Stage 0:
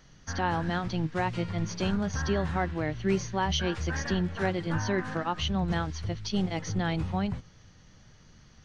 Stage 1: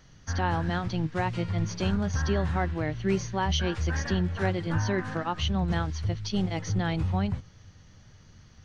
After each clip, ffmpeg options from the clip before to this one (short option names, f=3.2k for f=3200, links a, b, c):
-af "equalizer=f=91:t=o:w=0.58:g=8"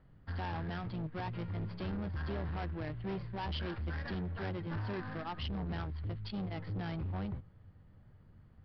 -af "adynamicsmooth=sensitivity=8:basefreq=1.3k,aresample=11025,asoftclip=type=tanh:threshold=-28.5dB,aresample=44100,volume=-5.5dB"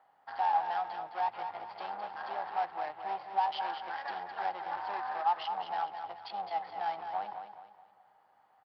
-filter_complex "[0:a]highpass=f=800:t=q:w=9,asplit=2[a][b];[b]aecho=0:1:212|424|636|848:0.398|0.151|0.0575|0.0218[c];[a][c]amix=inputs=2:normalize=0"